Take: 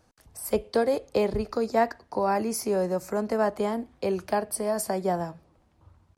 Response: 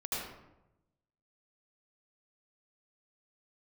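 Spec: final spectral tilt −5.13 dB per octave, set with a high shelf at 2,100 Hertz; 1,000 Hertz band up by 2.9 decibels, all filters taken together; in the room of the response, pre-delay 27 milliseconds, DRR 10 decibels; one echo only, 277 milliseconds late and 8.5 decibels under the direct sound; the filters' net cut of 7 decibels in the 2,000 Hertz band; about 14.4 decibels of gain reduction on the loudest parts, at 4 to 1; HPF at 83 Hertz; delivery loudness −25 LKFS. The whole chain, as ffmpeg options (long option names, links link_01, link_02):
-filter_complex "[0:a]highpass=83,equalizer=frequency=1000:width_type=o:gain=7,equalizer=frequency=2000:width_type=o:gain=-7.5,highshelf=frequency=2100:gain=-8.5,acompressor=threshold=-34dB:ratio=4,aecho=1:1:277:0.376,asplit=2[link_01][link_02];[1:a]atrim=start_sample=2205,adelay=27[link_03];[link_02][link_03]afir=irnorm=-1:irlink=0,volume=-14dB[link_04];[link_01][link_04]amix=inputs=2:normalize=0,volume=11.5dB"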